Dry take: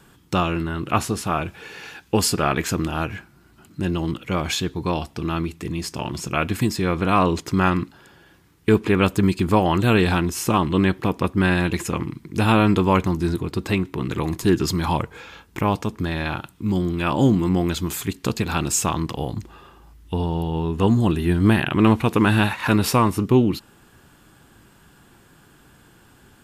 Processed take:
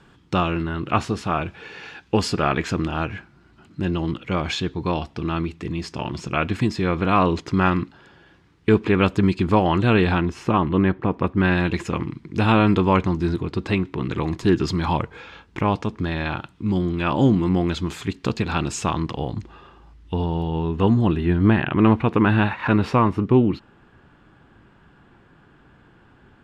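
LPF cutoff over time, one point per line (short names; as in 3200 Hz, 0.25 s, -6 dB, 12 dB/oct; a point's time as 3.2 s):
9.64 s 4400 Hz
11.05 s 1700 Hz
11.65 s 4400 Hz
20.49 s 4400 Hz
21.55 s 2400 Hz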